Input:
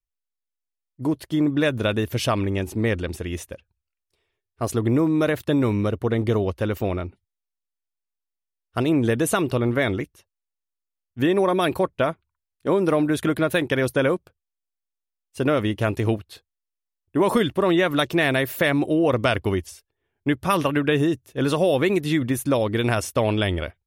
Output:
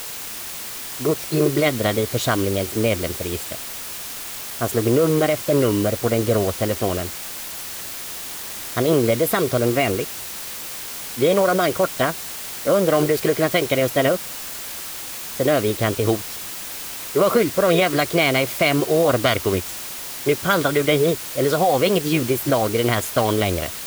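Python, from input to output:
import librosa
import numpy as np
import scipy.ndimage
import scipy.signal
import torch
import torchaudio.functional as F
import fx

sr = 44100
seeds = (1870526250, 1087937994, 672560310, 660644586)

y = fx.formant_shift(x, sr, semitones=4)
y = fx.notch_comb(y, sr, f0_hz=880.0)
y = fx.dmg_noise_colour(y, sr, seeds[0], colour='white', level_db=-35.0)
y = F.gain(torch.from_numpy(y), 3.0).numpy()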